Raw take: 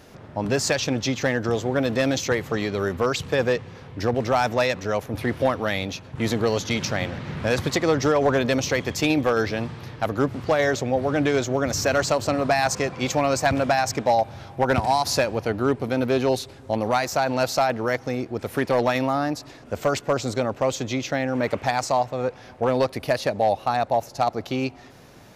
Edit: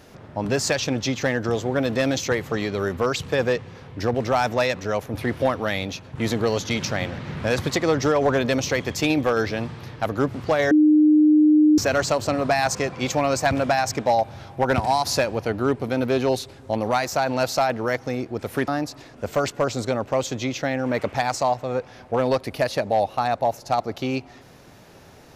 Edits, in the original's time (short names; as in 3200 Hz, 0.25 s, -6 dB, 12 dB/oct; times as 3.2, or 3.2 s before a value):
10.71–11.78 bleep 304 Hz -11.5 dBFS
18.68–19.17 cut